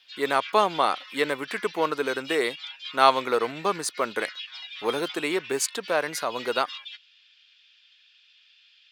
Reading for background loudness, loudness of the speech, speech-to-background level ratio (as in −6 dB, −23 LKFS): −38.5 LKFS, −26.0 LKFS, 12.5 dB